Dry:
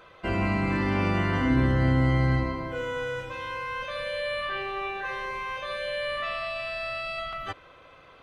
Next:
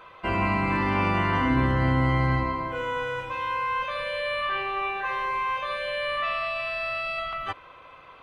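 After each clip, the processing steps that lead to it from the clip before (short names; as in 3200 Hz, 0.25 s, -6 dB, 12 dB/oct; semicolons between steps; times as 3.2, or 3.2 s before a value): fifteen-band EQ 1000 Hz +9 dB, 2500 Hz +5 dB, 6300 Hz -3 dB; gain -1 dB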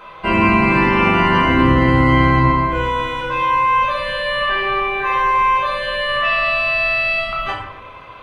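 shoebox room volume 250 m³, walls mixed, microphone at 1.3 m; gain +6.5 dB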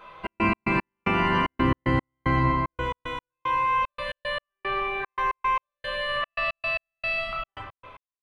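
step gate "xx.x.x..x" 113 bpm -60 dB; gain -8.5 dB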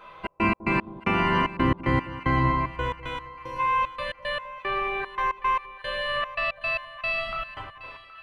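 spectral gain 3.3–3.59, 990–4100 Hz -15 dB; split-band echo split 870 Hz, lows 0.201 s, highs 0.77 s, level -15.5 dB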